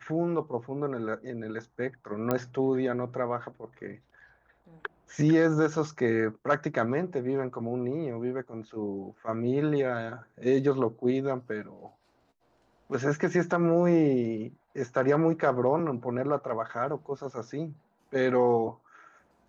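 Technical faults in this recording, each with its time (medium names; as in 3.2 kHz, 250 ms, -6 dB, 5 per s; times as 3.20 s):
2.31 s: pop -14 dBFS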